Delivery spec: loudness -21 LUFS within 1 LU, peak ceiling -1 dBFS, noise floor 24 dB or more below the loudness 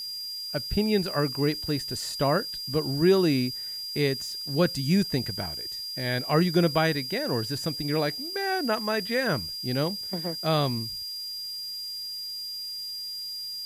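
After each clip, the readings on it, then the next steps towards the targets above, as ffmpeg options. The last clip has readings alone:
steady tone 4800 Hz; tone level -33 dBFS; noise floor -36 dBFS; noise floor target -52 dBFS; loudness -27.5 LUFS; peak -9.5 dBFS; loudness target -21.0 LUFS
-> -af "bandreject=f=4.8k:w=30"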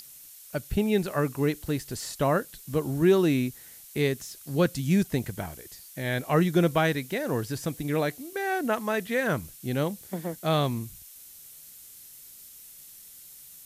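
steady tone none; noise floor -49 dBFS; noise floor target -52 dBFS
-> -af "afftdn=nr=6:nf=-49"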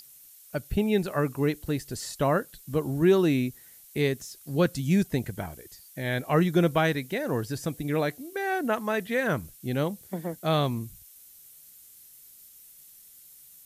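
noise floor -52 dBFS; loudness -27.5 LUFS; peak -10.0 dBFS; loudness target -21.0 LUFS
-> -af "volume=6.5dB"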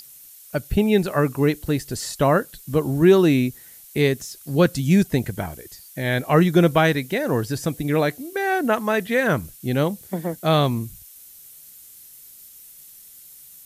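loudness -21.0 LUFS; peak -3.5 dBFS; noise floor -46 dBFS

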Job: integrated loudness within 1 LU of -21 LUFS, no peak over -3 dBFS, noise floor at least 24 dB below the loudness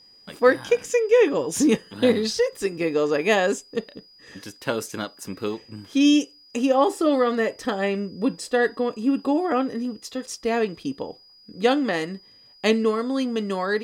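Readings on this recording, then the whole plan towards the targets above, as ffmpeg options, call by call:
steady tone 4900 Hz; tone level -50 dBFS; loudness -23.0 LUFS; peak -3.0 dBFS; loudness target -21.0 LUFS
-> -af "bandreject=f=4.9k:w=30"
-af "volume=2dB,alimiter=limit=-3dB:level=0:latency=1"

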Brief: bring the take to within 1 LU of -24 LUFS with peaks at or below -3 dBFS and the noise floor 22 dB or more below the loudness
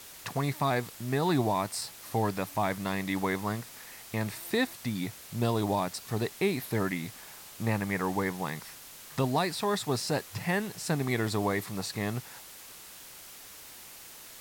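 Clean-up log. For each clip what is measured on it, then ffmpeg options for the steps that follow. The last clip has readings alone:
noise floor -48 dBFS; noise floor target -54 dBFS; loudness -31.5 LUFS; peak -14.0 dBFS; loudness target -24.0 LUFS
-> -af "afftdn=nr=6:nf=-48"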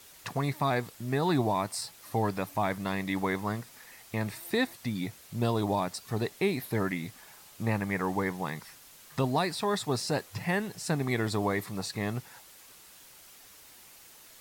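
noise floor -54 dBFS; loudness -31.5 LUFS; peak -14.5 dBFS; loudness target -24.0 LUFS
-> -af "volume=7.5dB"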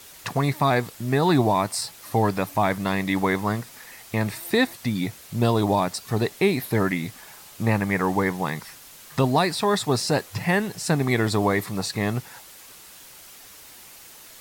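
loudness -24.0 LUFS; peak -7.0 dBFS; noise floor -46 dBFS

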